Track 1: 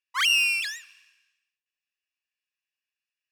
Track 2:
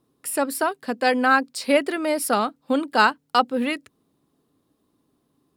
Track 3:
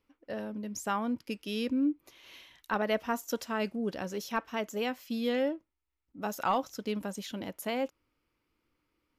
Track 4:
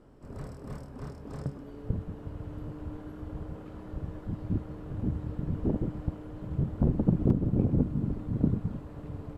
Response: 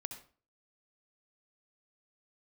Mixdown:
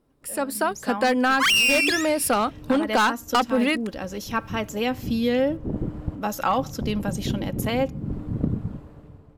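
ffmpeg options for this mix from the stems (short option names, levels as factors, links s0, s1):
-filter_complex "[0:a]adelay=1250,volume=1.12,asplit=2[s0][s1];[s1]volume=0.2[s2];[1:a]acontrast=38,volume=0.299[s3];[2:a]aecho=1:1:3.7:0.38,volume=0.376,asplit=3[s4][s5][s6];[s5]volume=0.133[s7];[3:a]volume=0.188,asplit=2[s8][s9];[s9]volume=0.501[s10];[s6]apad=whole_len=413518[s11];[s8][s11]sidechaincompress=threshold=0.00126:ratio=8:attack=8.5:release=166[s12];[4:a]atrim=start_sample=2205[s13];[s2][s7][s10]amix=inputs=3:normalize=0[s14];[s14][s13]afir=irnorm=-1:irlink=0[s15];[s0][s3][s4][s12][s15]amix=inputs=5:normalize=0,dynaudnorm=f=130:g=11:m=5.62,asoftclip=type=hard:threshold=0.282,acompressor=threshold=0.141:ratio=6"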